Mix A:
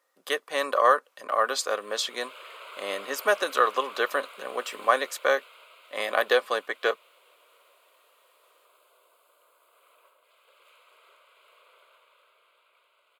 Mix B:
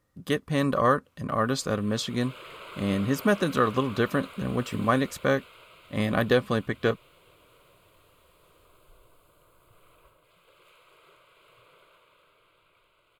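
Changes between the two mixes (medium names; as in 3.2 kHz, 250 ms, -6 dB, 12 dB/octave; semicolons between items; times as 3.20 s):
speech -3.5 dB; master: remove high-pass 500 Hz 24 dB/octave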